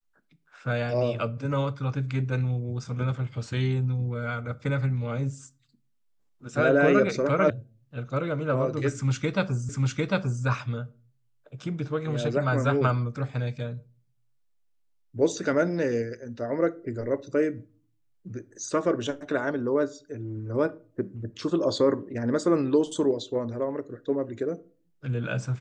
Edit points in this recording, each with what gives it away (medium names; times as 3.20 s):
7.50 s: sound stops dead
9.69 s: repeat of the last 0.75 s